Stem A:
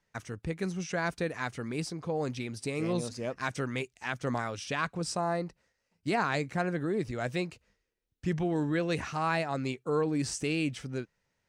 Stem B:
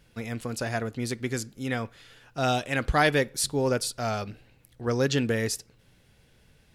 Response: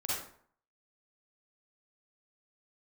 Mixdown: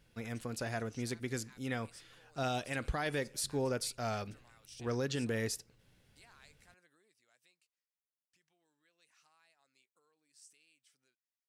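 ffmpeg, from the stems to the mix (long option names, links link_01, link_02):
-filter_complex "[0:a]equalizer=frequency=6400:width_type=o:width=0.39:gain=-4,acompressor=threshold=-38dB:ratio=10,aderivative,adelay=100,volume=-4dB,afade=type=out:start_time=6.79:duration=0.5:silence=0.334965[link_01];[1:a]volume=-7.5dB[link_02];[link_01][link_02]amix=inputs=2:normalize=0,alimiter=level_in=1.5dB:limit=-24dB:level=0:latency=1:release=67,volume=-1.5dB"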